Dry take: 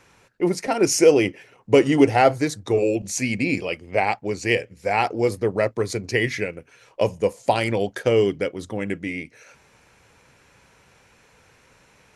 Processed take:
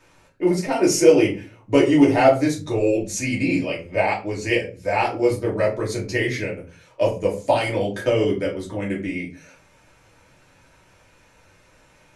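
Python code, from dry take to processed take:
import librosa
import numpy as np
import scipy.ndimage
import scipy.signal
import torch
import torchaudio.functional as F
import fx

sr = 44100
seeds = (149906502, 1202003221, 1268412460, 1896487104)

y = fx.room_shoebox(x, sr, seeds[0], volume_m3=140.0, walls='furnished', distance_m=2.7)
y = F.gain(torch.from_numpy(y), -5.5).numpy()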